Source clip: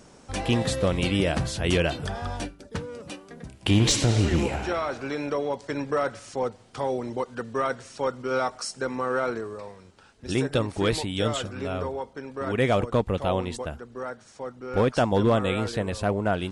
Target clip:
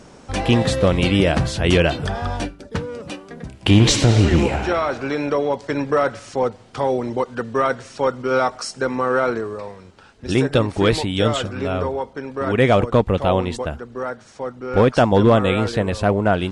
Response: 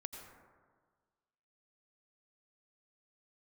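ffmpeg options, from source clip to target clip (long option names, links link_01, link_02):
-af "highshelf=frequency=7700:gain=-10,volume=7.5dB"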